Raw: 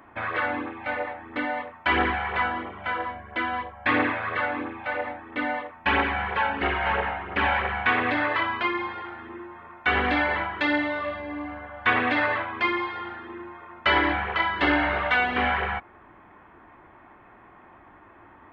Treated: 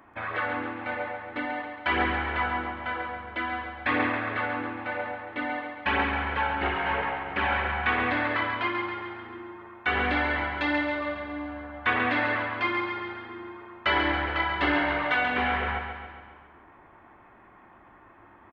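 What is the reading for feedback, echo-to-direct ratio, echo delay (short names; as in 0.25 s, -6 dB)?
57%, -5.5 dB, 0.137 s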